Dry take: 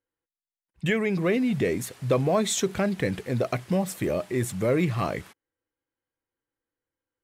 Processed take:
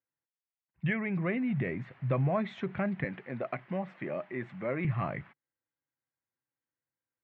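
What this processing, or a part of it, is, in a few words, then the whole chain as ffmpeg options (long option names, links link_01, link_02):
bass cabinet: -filter_complex "[0:a]highpass=89,equalizer=frequency=140:width_type=q:width=4:gain=7,equalizer=frequency=310:width_type=q:width=4:gain=-4,equalizer=frequency=450:width_type=q:width=4:gain=-10,equalizer=frequency=2000:width_type=q:width=4:gain=3,lowpass=frequency=2400:width=0.5412,lowpass=frequency=2400:width=1.3066,asettb=1/sr,asplit=3[link_01][link_02][link_03];[link_01]atrim=end=3.044[link_04];[link_02]atrim=start=3.04:end=4.85,asetpts=PTS-STARTPTS,afade=type=in:duration=0.004:curve=qsin,afade=type=out:start_time=1.806:duration=0.004:curve=qsin,highpass=240[link_05];[link_03]atrim=start=4.846[link_06];[link_04][link_05]acrossfade=duration=0.004:curve1=hsin:curve2=qsin[link_07];[link_07][link_06]acrossfade=duration=0.004:curve1=qsin:curve2=hsin,volume=-5.5dB"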